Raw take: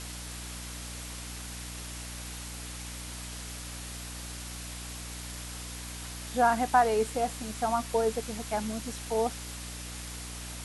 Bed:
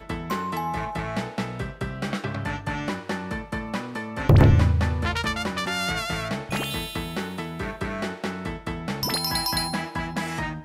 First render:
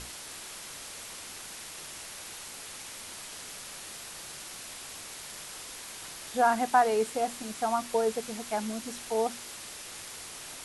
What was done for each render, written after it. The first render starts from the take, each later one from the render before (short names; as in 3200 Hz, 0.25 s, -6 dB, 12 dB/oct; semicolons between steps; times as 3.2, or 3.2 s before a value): notches 60/120/180/240/300 Hz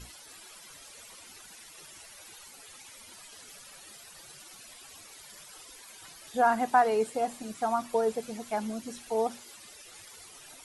denoiser 14 dB, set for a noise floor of -44 dBFS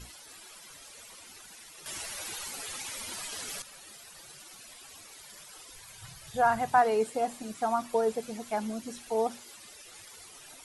1.86–3.62 gain +10.5 dB; 5.73–6.78 resonant low shelf 180 Hz +11.5 dB, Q 3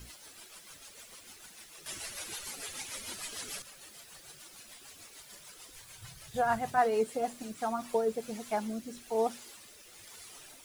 rotary speaker horn 6.7 Hz, later 1.1 Hz, at 7.26; requantised 10-bit, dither triangular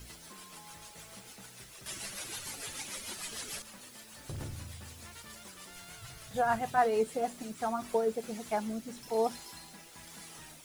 add bed -26.5 dB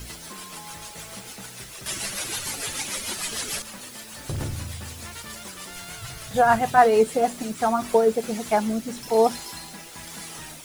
gain +11 dB